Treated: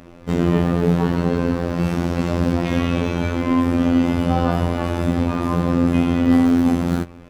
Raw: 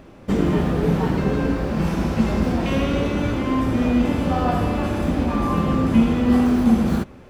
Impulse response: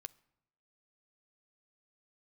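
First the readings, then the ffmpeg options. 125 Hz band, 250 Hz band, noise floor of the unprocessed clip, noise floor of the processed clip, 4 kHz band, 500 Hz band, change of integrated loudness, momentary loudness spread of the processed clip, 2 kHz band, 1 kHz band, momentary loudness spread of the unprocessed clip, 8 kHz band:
+2.0 dB, +1.0 dB, −44 dBFS, −41 dBFS, +0.5 dB, +1.0 dB, +1.0 dB, 5 LU, +0.5 dB, 0.0 dB, 5 LU, can't be measured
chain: -filter_complex "[0:a]asplit=2[link_01][link_02];[1:a]atrim=start_sample=2205[link_03];[link_02][link_03]afir=irnorm=-1:irlink=0,volume=13.5dB[link_04];[link_01][link_04]amix=inputs=2:normalize=0,afftfilt=real='hypot(re,im)*cos(PI*b)':imag='0':win_size=2048:overlap=0.75,volume=-6.5dB"

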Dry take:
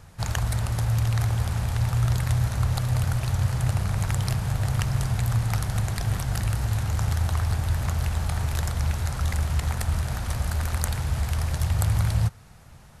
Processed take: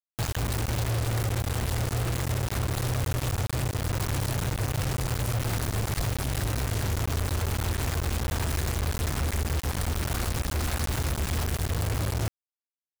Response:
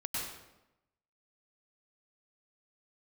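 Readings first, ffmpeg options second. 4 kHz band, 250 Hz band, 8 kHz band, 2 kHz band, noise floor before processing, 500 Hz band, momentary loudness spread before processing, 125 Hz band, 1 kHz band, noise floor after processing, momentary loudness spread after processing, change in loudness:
+2.0 dB, +0.5 dB, +1.5 dB, +0.5 dB, −48 dBFS, +4.5 dB, 4 LU, −4.5 dB, −0.5 dB, below −85 dBFS, 1 LU, −3.0 dB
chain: -af "lowshelf=frequency=100:gain=3,acompressor=threshold=-25dB:ratio=12,asoftclip=type=tanh:threshold=-18dB,acrusher=bits=4:mix=0:aa=0.000001"

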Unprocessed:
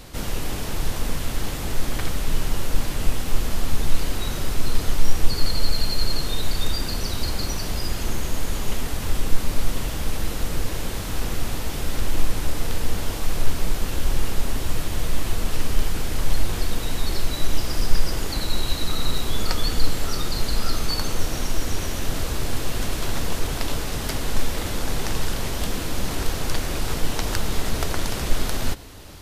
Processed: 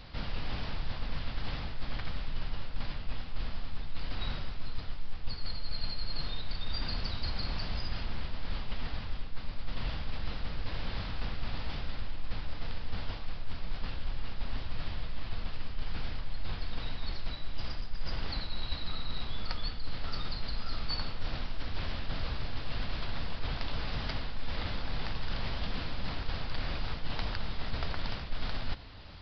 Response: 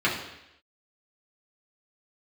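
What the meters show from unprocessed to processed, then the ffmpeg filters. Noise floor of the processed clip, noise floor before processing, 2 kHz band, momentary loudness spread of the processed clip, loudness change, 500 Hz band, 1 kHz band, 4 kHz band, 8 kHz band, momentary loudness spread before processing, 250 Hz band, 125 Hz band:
−40 dBFS, −29 dBFS, −9.5 dB, 6 LU, −11.5 dB, −14.5 dB, −10.5 dB, −10.0 dB, below −35 dB, 3 LU, −13.0 dB, −10.5 dB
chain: -af "equalizer=frequency=370:width_type=o:width=1:gain=-8.5,aresample=11025,aresample=44100,areverse,acompressor=threshold=-21dB:ratio=6,areverse,volume=-5.5dB"

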